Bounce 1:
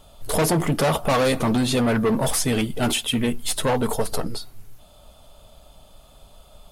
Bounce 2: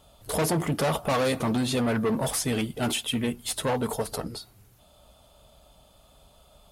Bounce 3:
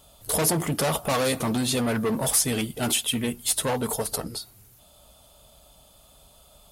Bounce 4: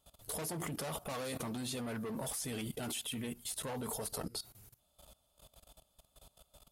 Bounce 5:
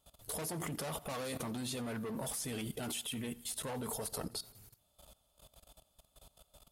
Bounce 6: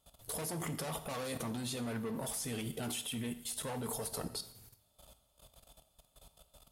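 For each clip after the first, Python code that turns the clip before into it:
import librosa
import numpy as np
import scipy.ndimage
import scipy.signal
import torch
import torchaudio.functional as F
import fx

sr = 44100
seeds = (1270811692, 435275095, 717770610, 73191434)

y1 = scipy.signal.sosfilt(scipy.signal.butter(2, 42.0, 'highpass', fs=sr, output='sos'), x)
y1 = F.gain(torch.from_numpy(y1), -5.0).numpy()
y2 = fx.high_shelf(y1, sr, hz=5300.0, db=10.5)
y3 = fx.level_steps(y2, sr, step_db=18)
y3 = F.gain(torch.from_numpy(y3), -3.5).numpy()
y4 = fx.echo_feedback(y3, sr, ms=88, feedback_pct=59, wet_db=-23)
y5 = fx.rev_double_slope(y4, sr, seeds[0], early_s=0.67, late_s=1.7, knee_db=-23, drr_db=10.0)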